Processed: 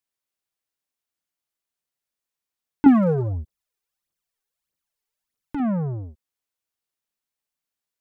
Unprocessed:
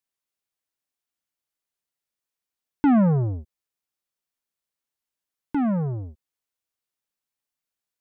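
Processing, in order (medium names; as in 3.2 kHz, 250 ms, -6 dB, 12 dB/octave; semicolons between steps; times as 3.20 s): 2.86–5.60 s: phaser 1.6 Hz, delay 2.7 ms, feedback 66%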